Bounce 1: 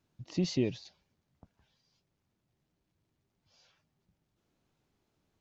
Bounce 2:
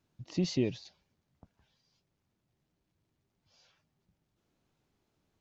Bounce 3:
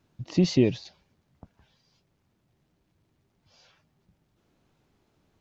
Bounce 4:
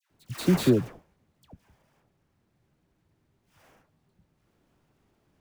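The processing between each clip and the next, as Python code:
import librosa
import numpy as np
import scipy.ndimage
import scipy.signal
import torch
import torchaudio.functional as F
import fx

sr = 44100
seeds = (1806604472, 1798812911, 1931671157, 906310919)

y1 = x
y2 = fx.high_shelf(y1, sr, hz=4200.0, db=-5.5)
y2 = y2 * 10.0 ** (9.0 / 20.0)
y3 = fx.sample_hold(y2, sr, seeds[0], rate_hz=4100.0, jitter_pct=20)
y3 = fx.dispersion(y3, sr, late='lows', ms=105.0, hz=1200.0)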